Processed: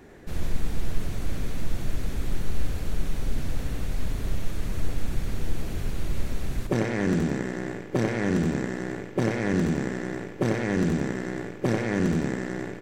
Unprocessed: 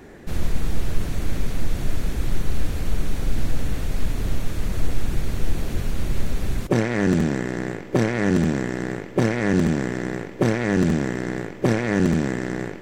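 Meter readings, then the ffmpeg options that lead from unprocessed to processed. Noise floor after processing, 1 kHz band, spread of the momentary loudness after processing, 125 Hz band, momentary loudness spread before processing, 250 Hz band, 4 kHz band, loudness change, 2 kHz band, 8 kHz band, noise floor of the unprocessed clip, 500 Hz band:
-39 dBFS, -4.5 dB, 9 LU, -4.5 dB, 9 LU, -4.5 dB, -4.5 dB, -4.5 dB, -4.5 dB, -4.5 dB, -37 dBFS, -4.5 dB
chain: -af "aecho=1:1:92:0.473,volume=0.531"

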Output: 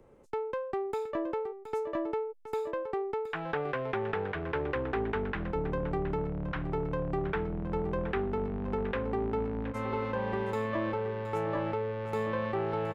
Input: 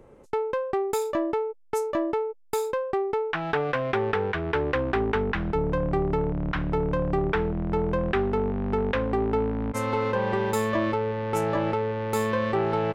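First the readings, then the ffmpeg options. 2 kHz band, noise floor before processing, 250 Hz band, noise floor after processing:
-7.0 dB, -51 dBFS, -7.0 dB, -44 dBFS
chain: -filter_complex "[0:a]acrossover=split=190|3700[s0][s1][s2];[s2]acompressor=threshold=0.00112:ratio=4[s3];[s0][s1][s3]amix=inputs=3:normalize=0,aecho=1:1:720:0.266,volume=0.447"

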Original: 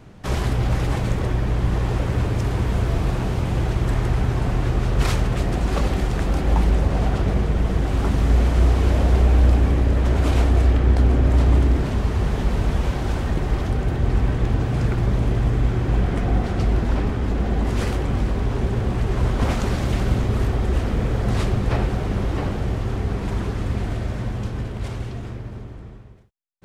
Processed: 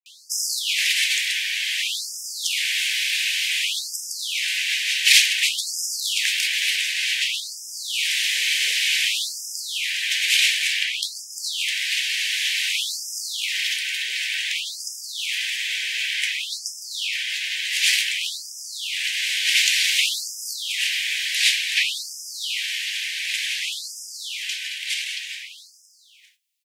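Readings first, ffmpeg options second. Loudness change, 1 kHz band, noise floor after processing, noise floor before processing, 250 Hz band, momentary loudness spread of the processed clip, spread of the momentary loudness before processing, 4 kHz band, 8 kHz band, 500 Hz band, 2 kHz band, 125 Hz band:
+0.5 dB, under -40 dB, -45 dBFS, -34 dBFS, under -40 dB, 11 LU, 8 LU, +19.0 dB, no reading, under -35 dB, +12.0 dB, under -40 dB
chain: -filter_complex "[0:a]afftfilt=real='re*(1-between(b*sr/4096,310,1500))':imag='im*(1-between(b*sr/4096,310,1500))':win_size=4096:overlap=0.75,acrossover=split=510 2200:gain=0.0794 1 0.112[s0][s1][s2];[s0][s1][s2]amix=inputs=3:normalize=0,acrossover=split=200[s3][s4];[s3]aeval=exprs='0.0335*(cos(1*acos(clip(val(0)/0.0335,-1,1)))-cos(1*PI/2))+0.00596*(cos(2*acos(clip(val(0)/0.0335,-1,1)))-cos(2*PI/2))+0.0119*(cos(5*acos(clip(val(0)/0.0335,-1,1)))-cos(5*PI/2))+0.015*(cos(7*acos(clip(val(0)/0.0335,-1,1)))-cos(7*PI/2))+0.000668*(cos(8*acos(clip(val(0)/0.0335,-1,1)))-cos(8*PI/2))':c=same[s5];[s4]acontrast=83[s6];[s5][s6]amix=inputs=2:normalize=0,flanger=delay=8.9:depth=5.1:regen=-68:speed=0.12:shape=triangular,acrossover=split=380[s7][s8];[s8]adelay=60[s9];[s7][s9]amix=inputs=2:normalize=0,aexciter=amount=12.5:drive=9.6:freq=2400,afftfilt=real='re*gte(b*sr/1024,350*pow(5000/350,0.5+0.5*sin(2*PI*0.55*pts/sr)))':imag='im*gte(b*sr/1024,350*pow(5000/350,0.5+0.5*sin(2*PI*0.55*pts/sr)))':win_size=1024:overlap=0.75,volume=1.26"

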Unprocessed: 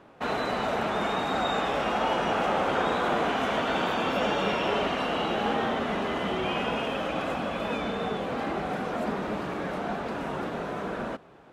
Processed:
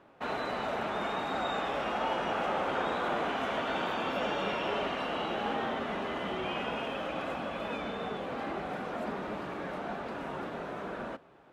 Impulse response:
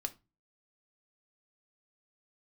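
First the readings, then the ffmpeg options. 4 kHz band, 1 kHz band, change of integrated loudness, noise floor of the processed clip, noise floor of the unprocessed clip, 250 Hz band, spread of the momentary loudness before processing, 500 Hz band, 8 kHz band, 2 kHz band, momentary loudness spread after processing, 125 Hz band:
-6.0 dB, -5.0 dB, -5.5 dB, -42 dBFS, -36 dBFS, -7.0 dB, 7 LU, -5.5 dB, -8.5 dB, -5.0 dB, 7 LU, -7.5 dB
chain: -filter_complex "[0:a]asplit=2[s0][s1];[s1]highpass=f=420:p=1[s2];[1:a]atrim=start_sample=2205,lowpass=4800[s3];[s2][s3]afir=irnorm=-1:irlink=0,volume=0.501[s4];[s0][s4]amix=inputs=2:normalize=0,volume=0.398"

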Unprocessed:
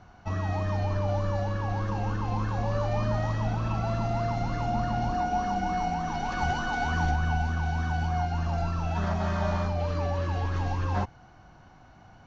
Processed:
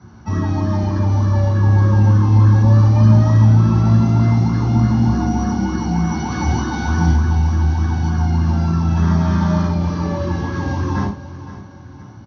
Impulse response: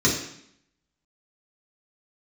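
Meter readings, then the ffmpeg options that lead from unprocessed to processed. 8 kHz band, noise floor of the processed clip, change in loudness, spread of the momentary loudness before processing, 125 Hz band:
no reading, -37 dBFS, +13.0 dB, 2 LU, +15.5 dB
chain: -filter_complex "[0:a]aecho=1:1:517|1034|1551|2068:0.188|0.081|0.0348|0.015[s0];[1:a]atrim=start_sample=2205,afade=t=out:st=0.14:d=0.01,atrim=end_sample=6615,asetrate=38808,aresample=44100[s1];[s0][s1]afir=irnorm=-1:irlink=0,volume=0.335"

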